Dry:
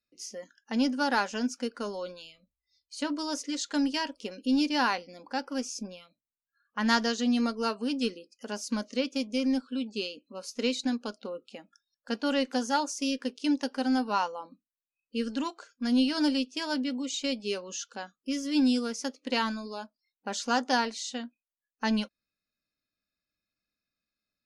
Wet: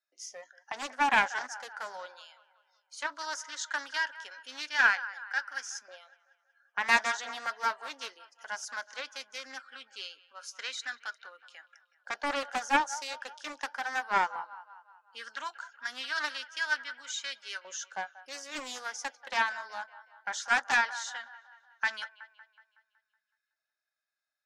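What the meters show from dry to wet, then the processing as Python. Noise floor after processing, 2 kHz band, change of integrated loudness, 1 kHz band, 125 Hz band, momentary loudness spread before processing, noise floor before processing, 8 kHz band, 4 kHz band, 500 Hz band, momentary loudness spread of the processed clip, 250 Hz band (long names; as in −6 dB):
below −85 dBFS, +6.5 dB, −2.5 dB, +0.5 dB, can't be measured, 15 LU, below −85 dBFS, −1.5 dB, −4.0 dB, −10.0 dB, 19 LU, −21.5 dB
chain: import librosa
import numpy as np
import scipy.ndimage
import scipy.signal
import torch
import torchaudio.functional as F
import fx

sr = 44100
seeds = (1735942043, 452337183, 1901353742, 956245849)

p1 = fx.filter_lfo_highpass(x, sr, shape='saw_up', hz=0.17, low_hz=720.0, high_hz=1500.0, q=1.9)
p2 = fx.cabinet(p1, sr, low_hz=380.0, low_slope=12, high_hz=9800.0, hz=(470.0, 1100.0, 1600.0, 2600.0, 4500.0, 8300.0), db=(-6, -8, 7, -9, -7, -5))
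p3 = p2 + fx.echo_wet_bandpass(p2, sr, ms=186, feedback_pct=51, hz=1300.0, wet_db=-15, dry=0)
y = fx.doppler_dist(p3, sr, depth_ms=0.41)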